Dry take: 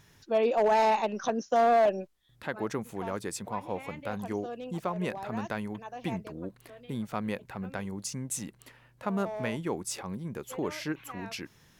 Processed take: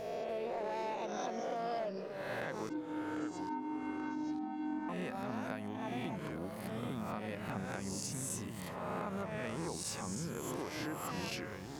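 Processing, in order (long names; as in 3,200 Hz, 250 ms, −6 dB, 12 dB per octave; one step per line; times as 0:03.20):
peak hold with a rise ahead of every peak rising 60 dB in 0.96 s
0:02.69–0:04.89: channel vocoder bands 16, square 305 Hz
downward compressor 12 to 1, threshold −37 dBFS, peak gain reduction 18.5 dB
delay with pitch and tempo change per echo 291 ms, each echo −3 semitones, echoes 3, each echo −6 dB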